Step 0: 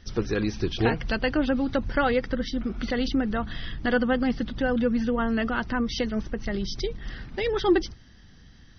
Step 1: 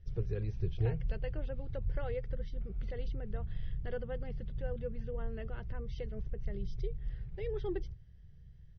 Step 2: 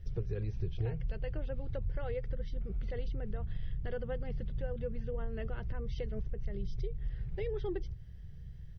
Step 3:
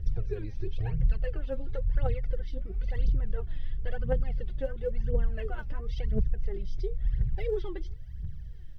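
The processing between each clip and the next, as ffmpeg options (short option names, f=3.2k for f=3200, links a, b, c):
-af "firequalizer=gain_entry='entry(150,0);entry(250,-29);entry(410,-9);entry(760,-19);entry(1200,-24);entry(2200,-18);entry(4400,-26)':delay=0.05:min_phase=1,volume=-2dB"
-af "acompressor=threshold=-42dB:ratio=3,volume=8dB"
-af "aphaser=in_gain=1:out_gain=1:delay=3.8:decay=0.75:speed=0.97:type=triangular"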